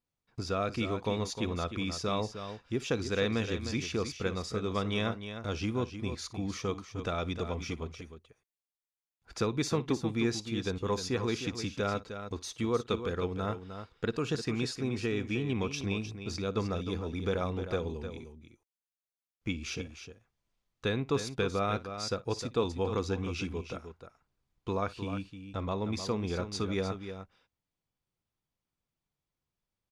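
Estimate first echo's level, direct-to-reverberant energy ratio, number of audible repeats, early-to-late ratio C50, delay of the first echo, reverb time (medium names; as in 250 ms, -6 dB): -19.5 dB, no reverb, 2, no reverb, 57 ms, no reverb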